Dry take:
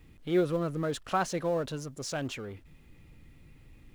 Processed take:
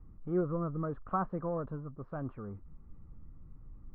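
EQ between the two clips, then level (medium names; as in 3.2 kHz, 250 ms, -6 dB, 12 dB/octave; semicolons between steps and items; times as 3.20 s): four-pole ladder low-pass 1.3 kHz, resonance 70%; tilt EQ -3.5 dB/octave; peaking EQ 200 Hz +6 dB 0.24 oct; 0.0 dB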